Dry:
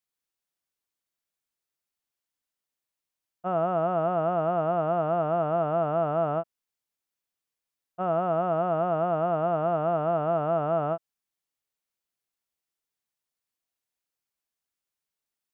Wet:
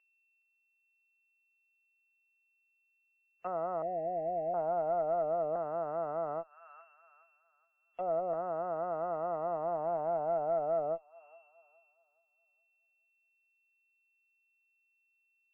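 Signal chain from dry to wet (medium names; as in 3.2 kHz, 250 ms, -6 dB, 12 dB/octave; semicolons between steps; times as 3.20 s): LFO low-pass saw down 0.36 Hz 560–2000 Hz; whistle 2.7 kHz -36 dBFS; gate with hold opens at -29 dBFS; on a send: feedback echo behind a high-pass 418 ms, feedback 31%, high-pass 2.6 kHz, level -7 dB; on the sum: valve stage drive 17 dB, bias 0.6; 3.82–4.54 s: Chebyshev band-stop 760–1800 Hz, order 4; in parallel at +0.5 dB: compression, threshold -42 dBFS, peak gain reduction 20.5 dB; on the sum: three-band isolator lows -13 dB, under 350 Hz, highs -19 dB, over 2 kHz; low-pass that closes with the level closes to 910 Hz, closed at -27.5 dBFS; treble shelf 2.7 kHz -3.5 dB; trim -7 dB; WMA 32 kbps 16 kHz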